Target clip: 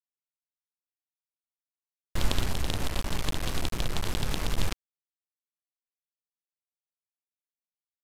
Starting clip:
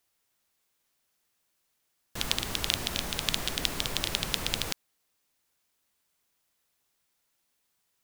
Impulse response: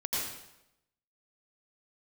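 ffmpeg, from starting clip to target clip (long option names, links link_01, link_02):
-filter_complex "[0:a]aeval=exprs='if(lt(val(0),0),0.251*val(0),val(0))':channel_layout=same,aemphasis=mode=reproduction:type=bsi,asettb=1/sr,asplit=3[link_01][link_02][link_03];[link_01]atrim=end=2.474[link_04];[link_02]atrim=start=2.47:end=4.58,asetpts=PTS-STARTPTS,afade=type=in:duration=0.004:curve=qsin,afade=type=out:start_time=2.106:duration=0.004:curve=qsin,acompressor=threshold=-24dB:ratio=12[link_05];[link_03]atrim=start=4.576[link_06];[link_04][link_05]acrossfade=duration=0.004:curve1=hsin:curve2=qsin[link_07];[link_07][link_06]acrossfade=duration=0.004:curve1=qsin:curve2=hsin,acrusher=bits=5:mix=0:aa=0.000001,aresample=32000,aresample=44100,volume=2dB"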